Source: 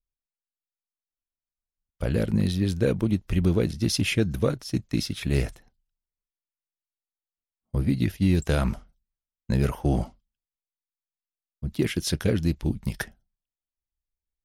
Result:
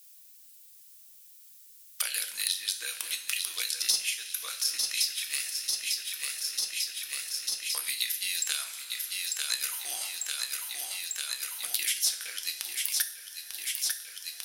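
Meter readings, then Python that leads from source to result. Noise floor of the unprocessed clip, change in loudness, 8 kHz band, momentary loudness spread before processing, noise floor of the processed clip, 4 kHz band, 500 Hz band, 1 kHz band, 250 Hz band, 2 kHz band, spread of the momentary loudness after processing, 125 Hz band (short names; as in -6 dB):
under -85 dBFS, -4.0 dB, +12.0 dB, 9 LU, -54 dBFS, +7.5 dB, -28.0 dB, -8.5 dB, under -40 dB, +1.0 dB, 6 LU, under -40 dB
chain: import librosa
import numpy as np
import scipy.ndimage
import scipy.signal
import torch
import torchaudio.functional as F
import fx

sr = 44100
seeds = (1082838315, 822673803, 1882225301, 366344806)

p1 = scipy.signal.sosfilt(scipy.signal.butter(2, 1500.0, 'highpass', fs=sr, output='sos'), x)
p2 = np.diff(p1, prepend=0.0)
p3 = fx.transient(p2, sr, attack_db=8, sustain_db=2)
p4 = 10.0 ** (-19.0 / 20.0) * np.tanh(p3 / 10.0 ** (-19.0 / 20.0))
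p5 = p3 + (p4 * 10.0 ** (-5.0 / 20.0))
p6 = fx.echo_feedback(p5, sr, ms=896, feedback_pct=57, wet_db=-11.5)
p7 = fx.rev_double_slope(p6, sr, seeds[0], early_s=0.37, late_s=1.8, knee_db=-17, drr_db=4.5)
p8 = fx.band_squash(p7, sr, depth_pct=100)
y = p8 * 10.0 ** (4.0 / 20.0)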